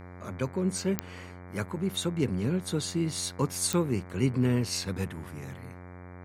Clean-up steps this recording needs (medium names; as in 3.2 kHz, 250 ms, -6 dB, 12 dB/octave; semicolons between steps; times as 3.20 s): de-click; de-hum 90 Hz, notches 26